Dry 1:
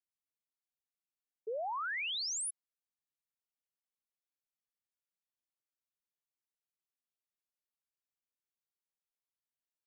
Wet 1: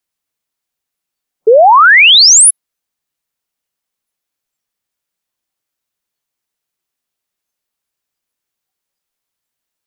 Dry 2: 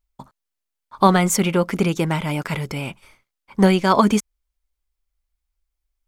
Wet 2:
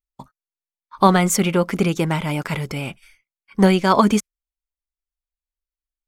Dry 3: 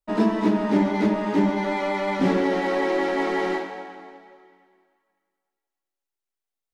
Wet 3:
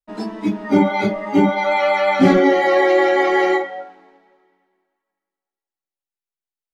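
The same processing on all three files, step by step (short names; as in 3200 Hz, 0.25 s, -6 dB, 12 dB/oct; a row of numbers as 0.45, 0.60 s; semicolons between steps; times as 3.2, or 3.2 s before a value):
spectral noise reduction 17 dB; normalise peaks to -1.5 dBFS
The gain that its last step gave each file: +32.5, +0.5, +10.0 dB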